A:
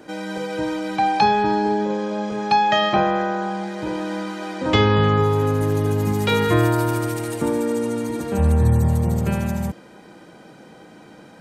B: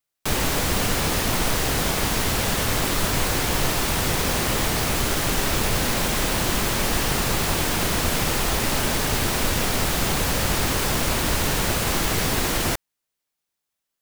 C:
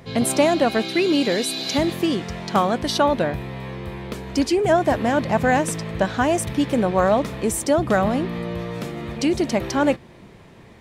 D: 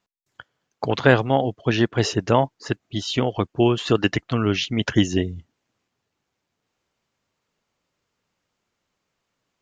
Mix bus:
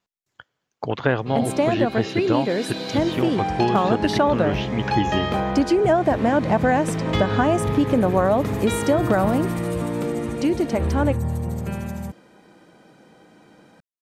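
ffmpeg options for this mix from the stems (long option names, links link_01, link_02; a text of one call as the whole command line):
ffmpeg -i stem1.wav -i stem2.wav -i stem3.wav -i stem4.wav -filter_complex "[0:a]asoftclip=type=hard:threshold=-9dB,adelay=2400,volume=-6.5dB[link_01];[2:a]highshelf=frequency=2600:gain=-10.5,dynaudnorm=framelen=230:gausssize=21:maxgain=8dB,adelay=1200,volume=-1dB[link_02];[3:a]acrossover=split=2900[link_03][link_04];[link_04]acompressor=threshold=-39dB:ratio=4:attack=1:release=60[link_05];[link_03][link_05]amix=inputs=2:normalize=0,volume=-2.5dB[link_06];[link_01][link_02][link_06]amix=inputs=3:normalize=0,acompressor=threshold=-14dB:ratio=6" out.wav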